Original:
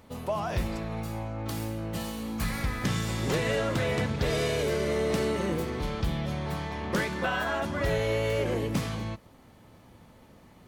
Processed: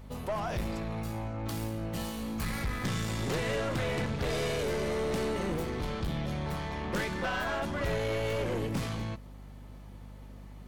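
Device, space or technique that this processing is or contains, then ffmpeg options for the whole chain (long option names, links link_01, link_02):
valve amplifier with mains hum: -af "aeval=exprs='(tanh(22.4*val(0)+0.3)-tanh(0.3))/22.4':channel_layout=same,aeval=exprs='val(0)+0.00501*(sin(2*PI*50*n/s)+sin(2*PI*2*50*n/s)/2+sin(2*PI*3*50*n/s)/3+sin(2*PI*4*50*n/s)/4+sin(2*PI*5*50*n/s)/5)':channel_layout=same"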